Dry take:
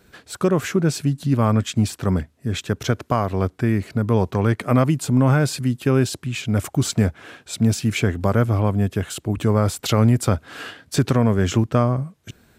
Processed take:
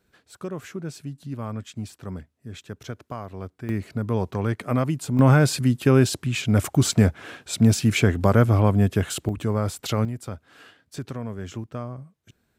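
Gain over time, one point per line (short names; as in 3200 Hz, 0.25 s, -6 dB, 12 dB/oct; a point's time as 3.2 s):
-14 dB
from 3.69 s -6 dB
from 5.19 s +1 dB
from 9.29 s -6 dB
from 10.05 s -15 dB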